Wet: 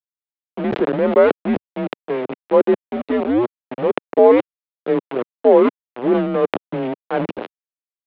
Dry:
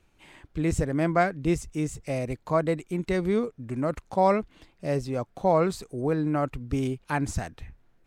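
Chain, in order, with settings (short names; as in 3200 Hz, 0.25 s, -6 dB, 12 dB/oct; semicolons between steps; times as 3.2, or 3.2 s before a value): 4.18–5.82 Chebyshev high-pass 260 Hz, order 4; sample gate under -26 dBFS; bell 540 Hz +14.5 dB 1.8 oct; mistuned SSB -120 Hz 320–3500 Hz; sustainer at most 60 dB/s; gain -1.5 dB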